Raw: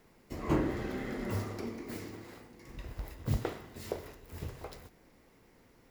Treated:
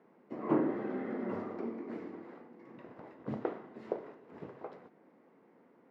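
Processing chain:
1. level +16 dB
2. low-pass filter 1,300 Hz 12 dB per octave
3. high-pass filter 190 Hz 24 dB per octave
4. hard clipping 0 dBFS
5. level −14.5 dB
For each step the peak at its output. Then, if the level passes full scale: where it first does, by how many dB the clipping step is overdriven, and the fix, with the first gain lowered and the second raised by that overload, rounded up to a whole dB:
−1.5, −2.0, −2.0, −2.0, −16.5 dBFS
no step passes full scale

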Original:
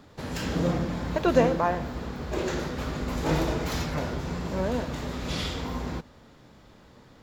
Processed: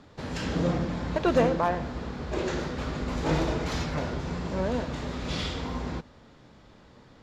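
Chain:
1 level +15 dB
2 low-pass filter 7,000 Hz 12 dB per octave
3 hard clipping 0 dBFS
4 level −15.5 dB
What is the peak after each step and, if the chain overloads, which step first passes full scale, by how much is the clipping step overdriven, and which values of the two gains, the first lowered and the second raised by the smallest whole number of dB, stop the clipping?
+7.0, +7.0, 0.0, −15.5 dBFS
step 1, 7.0 dB
step 1 +8 dB, step 4 −8.5 dB

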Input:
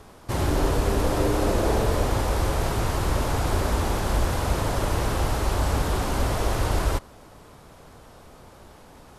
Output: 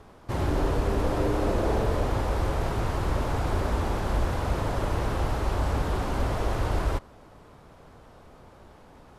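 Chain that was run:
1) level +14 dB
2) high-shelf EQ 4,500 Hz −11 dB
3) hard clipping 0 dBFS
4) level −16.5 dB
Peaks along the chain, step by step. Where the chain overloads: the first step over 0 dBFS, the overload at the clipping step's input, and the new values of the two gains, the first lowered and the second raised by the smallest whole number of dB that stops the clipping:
+3.5, +3.5, 0.0, −16.5 dBFS
step 1, 3.5 dB
step 1 +10 dB, step 4 −12.5 dB

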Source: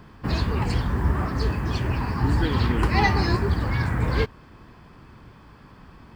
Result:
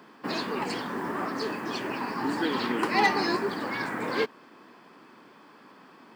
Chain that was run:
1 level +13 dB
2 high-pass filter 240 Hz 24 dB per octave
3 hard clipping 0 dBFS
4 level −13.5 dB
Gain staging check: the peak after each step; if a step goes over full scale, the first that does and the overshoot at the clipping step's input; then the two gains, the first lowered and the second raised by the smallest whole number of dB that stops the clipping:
+5.0, +4.0, 0.0, −13.5 dBFS
step 1, 4.0 dB
step 1 +9 dB, step 4 −9.5 dB

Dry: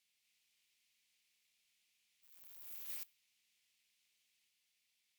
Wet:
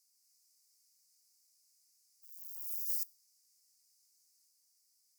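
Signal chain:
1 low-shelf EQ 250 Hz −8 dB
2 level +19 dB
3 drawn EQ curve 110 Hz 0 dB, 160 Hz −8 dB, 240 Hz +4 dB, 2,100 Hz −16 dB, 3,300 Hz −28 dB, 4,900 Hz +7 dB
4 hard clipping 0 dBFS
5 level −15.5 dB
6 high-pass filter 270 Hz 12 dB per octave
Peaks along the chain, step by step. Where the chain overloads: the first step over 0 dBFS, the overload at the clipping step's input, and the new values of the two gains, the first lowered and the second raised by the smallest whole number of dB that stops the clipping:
−29.5, −10.5, −3.5, −3.5, −19.0, −19.0 dBFS
no step passes full scale

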